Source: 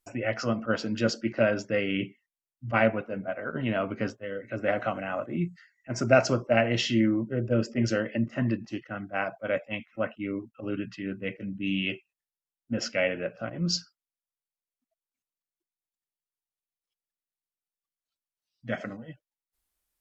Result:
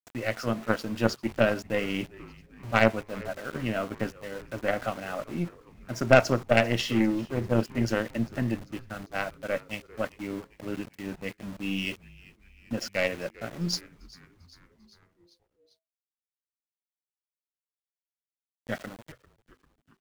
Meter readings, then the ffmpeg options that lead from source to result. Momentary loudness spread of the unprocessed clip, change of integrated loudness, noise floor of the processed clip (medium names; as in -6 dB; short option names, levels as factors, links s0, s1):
11 LU, 0.0 dB, under -85 dBFS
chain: -filter_complex "[0:a]aeval=exprs='val(0)*gte(abs(val(0)),0.0133)':c=same,aeval=exprs='0.501*(cos(1*acos(clip(val(0)/0.501,-1,1)))-cos(1*PI/2))+0.0447*(cos(4*acos(clip(val(0)/0.501,-1,1)))-cos(4*PI/2))+0.0316*(cos(7*acos(clip(val(0)/0.501,-1,1)))-cos(7*PI/2))':c=same,asplit=6[s0][s1][s2][s3][s4][s5];[s1]adelay=396,afreqshift=-130,volume=0.0891[s6];[s2]adelay=792,afreqshift=-260,volume=0.0562[s7];[s3]adelay=1188,afreqshift=-390,volume=0.0355[s8];[s4]adelay=1584,afreqshift=-520,volume=0.0224[s9];[s5]adelay=1980,afreqshift=-650,volume=0.014[s10];[s0][s6][s7][s8][s9][s10]amix=inputs=6:normalize=0,volume=1.26"